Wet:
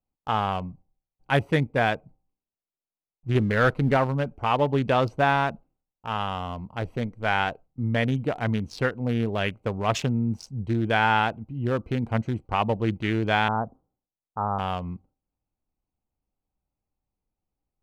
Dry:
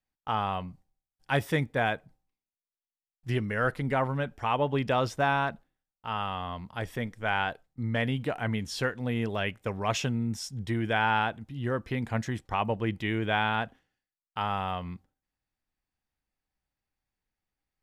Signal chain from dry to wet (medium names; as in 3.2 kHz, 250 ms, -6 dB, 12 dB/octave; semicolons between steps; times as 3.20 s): local Wiener filter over 25 samples; 3.35–3.97 s: waveshaping leveller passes 1; 13.48–14.59 s: steep low-pass 1.3 kHz 48 dB/octave; trim +5 dB